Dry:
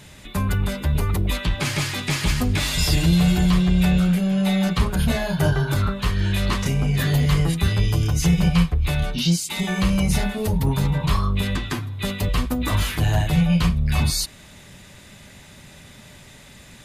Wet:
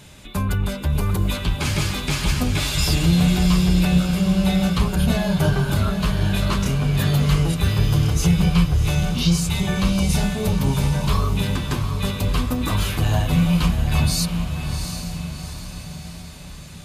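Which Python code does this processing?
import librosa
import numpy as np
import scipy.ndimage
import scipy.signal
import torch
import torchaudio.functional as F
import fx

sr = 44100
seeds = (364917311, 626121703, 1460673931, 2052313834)

y = fx.peak_eq(x, sr, hz=1900.0, db=-7.5, octaves=0.21)
y = fx.echo_diffused(y, sr, ms=741, feedback_pct=52, wet_db=-7.0)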